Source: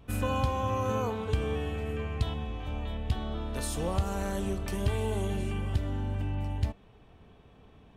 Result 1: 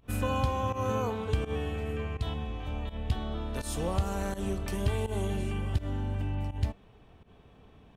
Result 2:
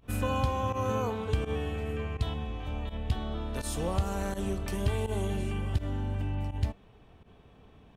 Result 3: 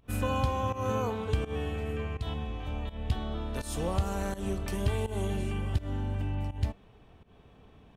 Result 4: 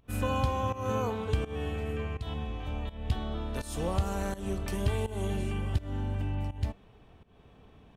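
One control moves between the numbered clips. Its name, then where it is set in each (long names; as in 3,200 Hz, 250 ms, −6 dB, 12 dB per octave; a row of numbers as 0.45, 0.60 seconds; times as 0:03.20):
fake sidechain pumping, release: 116, 76, 170, 250 milliseconds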